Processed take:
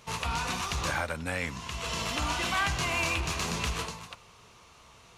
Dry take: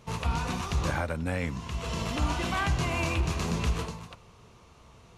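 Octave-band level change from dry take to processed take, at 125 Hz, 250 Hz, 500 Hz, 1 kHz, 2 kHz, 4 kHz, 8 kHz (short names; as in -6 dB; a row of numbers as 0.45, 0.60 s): -6.5, -5.5, -2.5, +1.0, +3.5, +4.5, +5.0 dB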